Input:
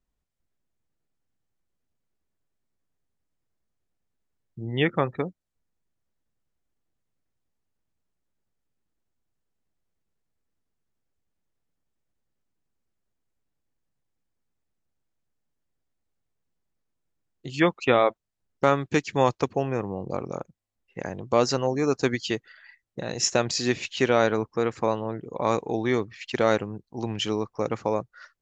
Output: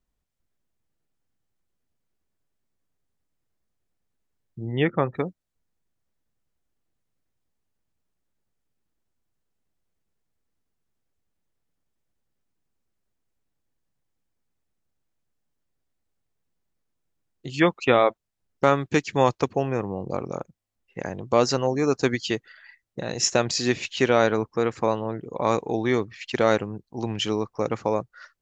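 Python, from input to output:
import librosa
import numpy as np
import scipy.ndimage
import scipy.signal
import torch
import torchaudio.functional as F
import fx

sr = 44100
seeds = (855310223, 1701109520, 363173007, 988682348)

y = fx.high_shelf(x, sr, hz=3300.0, db=-11.5, at=(4.72, 5.14))
y = y * librosa.db_to_amplitude(1.5)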